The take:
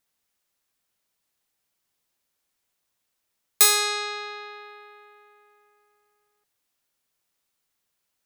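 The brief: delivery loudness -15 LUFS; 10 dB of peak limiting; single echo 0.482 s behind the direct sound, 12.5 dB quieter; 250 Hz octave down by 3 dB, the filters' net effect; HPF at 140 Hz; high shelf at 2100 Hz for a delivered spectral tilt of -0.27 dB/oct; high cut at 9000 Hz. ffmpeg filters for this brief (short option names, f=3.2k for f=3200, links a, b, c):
-af "highpass=140,lowpass=9k,equalizer=f=250:t=o:g=-7.5,highshelf=f=2.1k:g=-7.5,alimiter=limit=-23dB:level=0:latency=1,aecho=1:1:482:0.237,volume=19dB"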